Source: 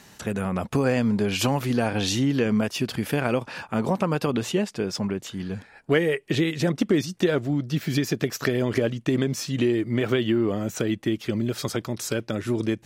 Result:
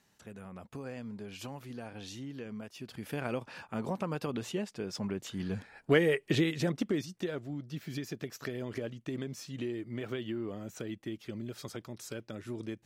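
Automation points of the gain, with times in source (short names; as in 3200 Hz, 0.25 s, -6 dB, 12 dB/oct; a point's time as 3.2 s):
2.74 s -20 dB
3.22 s -11 dB
4.82 s -11 dB
5.49 s -4 dB
6.3 s -4 dB
7.33 s -14.5 dB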